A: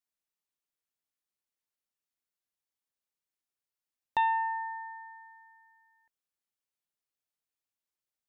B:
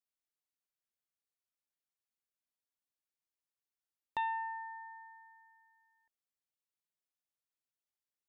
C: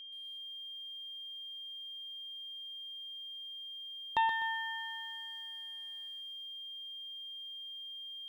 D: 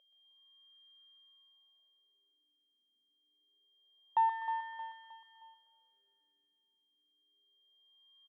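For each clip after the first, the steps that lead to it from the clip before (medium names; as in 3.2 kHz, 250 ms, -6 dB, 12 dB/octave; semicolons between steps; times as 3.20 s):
dynamic bell 530 Hz, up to -6 dB, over -47 dBFS, Q 1.3; trim -6.5 dB
whistle 3.2 kHz -51 dBFS; bit-crushed delay 125 ms, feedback 35%, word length 11-bit, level -8.5 dB; trim +5.5 dB
wah-wah 0.26 Hz 250–1300 Hz, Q 3.7; feedback delay 312 ms, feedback 41%, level -10.5 dB; trim +2 dB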